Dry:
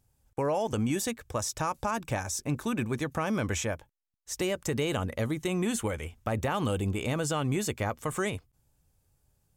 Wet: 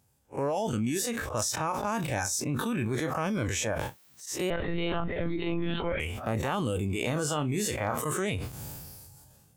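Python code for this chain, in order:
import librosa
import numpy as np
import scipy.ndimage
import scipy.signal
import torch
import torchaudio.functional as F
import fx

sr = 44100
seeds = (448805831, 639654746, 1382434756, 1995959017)

p1 = fx.spec_blur(x, sr, span_ms=82.0)
p2 = scipy.signal.sosfilt(scipy.signal.butter(2, 100.0, 'highpass', fs=sr, output='sos'), p1)
p3 = fx.dereverb_blind(p2, sr, rt60_s=1.1)
p4 = fx.over_compress(p3, sr, threshold_db=-35.0, ratio=-0.5)
p5 = p3 + (p4 * librosa.db_to_amplitude(-2.0))
p6 = np.clip(10.0 ** (17.5 / 20.0) * p5, -1.0, 1.0) / 10.0 ** (17.5 / 20.0)
p7 = fx.lpc_monotone(p6, sr, seeds[0], pitch_hz=170.0, order=16, at=(4.5, 6.0))
p8 = fx.doubler(p7, sr, ms=33.0, db=-12.0, at=(6.86, 8.02))
y = fx.sustainer(p8, sr, db_per_s=27.0)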